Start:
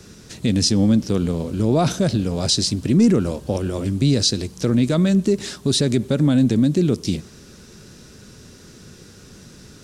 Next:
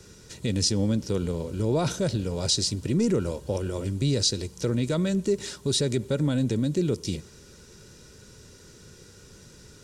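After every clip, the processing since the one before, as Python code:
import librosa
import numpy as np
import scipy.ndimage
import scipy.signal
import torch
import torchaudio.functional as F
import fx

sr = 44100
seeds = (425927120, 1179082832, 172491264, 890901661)

y = fx.peak_eq(x, sr, hz=7400.0, db=3.0, octaves=0.52)
y = y + 0.39 * np.pad(y, (int(2.1 * sr / 1000.0), 0))[:len(y)]
y = y * librosa.db_to_amplitude(-6.5)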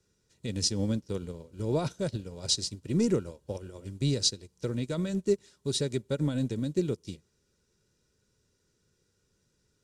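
y = fx.upward_expand(x, sr, threshold_db=-36.0, expansion=2.5)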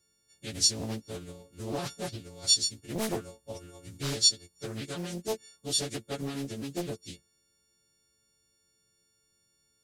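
y = fx.freq_snap(x, sr, grid_st=4)
y = fx.doppler_dist(y, sr, depth_ms=0.89)
y = y * librosa.db_to_amplitude(-5.5)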